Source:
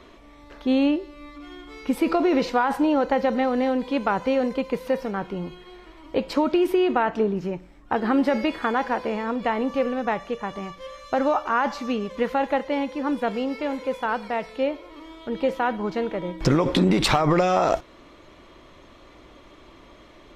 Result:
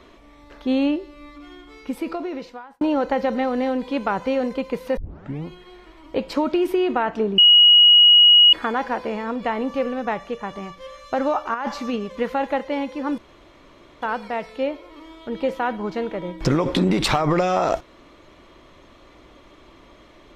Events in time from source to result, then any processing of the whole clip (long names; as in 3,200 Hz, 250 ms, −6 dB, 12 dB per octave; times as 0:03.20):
0:01.33–0:02.81: fade out
0:04.97: tape start 0.49 s
0:07.38–0:08.53: beep over 2,900 Hz −8 dBFS
0:11.54–0:11.96: compressor whose output falls as the input rises −24 dBFS, ratio −0.5
0:13.18–0:14.02: fill with room tone